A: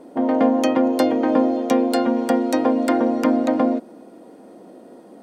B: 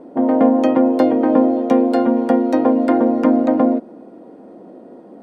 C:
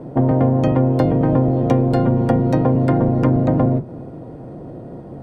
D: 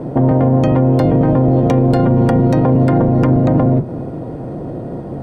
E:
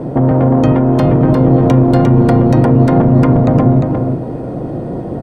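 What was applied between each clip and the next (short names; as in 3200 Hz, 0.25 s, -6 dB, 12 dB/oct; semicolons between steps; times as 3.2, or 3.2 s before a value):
LPF 1000 Hz 6 dB/oct; gain +4.5 dB
octaver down 1 oct, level +3 dB; compressor 4:1, threshold -17 dBFS, peak gain reduction 10 dB; gain +3.5 dB
limiter -13.5 dBFS, peak gain reduction 9.5 dB; gain +8.5 dB
soft clip -6.5 dBFS, distortion -20 dB; on a send: echo 0.351 s -5 dB; on the sum: gain +3 dB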